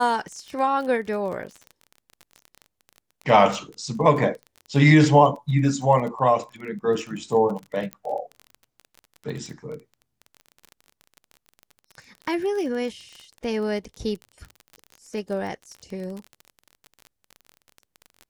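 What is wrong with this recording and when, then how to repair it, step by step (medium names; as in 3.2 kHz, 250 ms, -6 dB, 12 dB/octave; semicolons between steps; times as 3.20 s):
crackle 26 per s -31 dBFS
7.93 s: pop -18 dBFS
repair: de-click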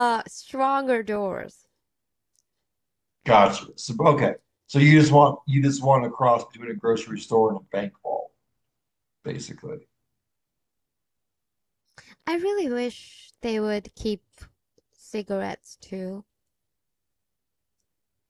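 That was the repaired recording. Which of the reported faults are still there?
nothing left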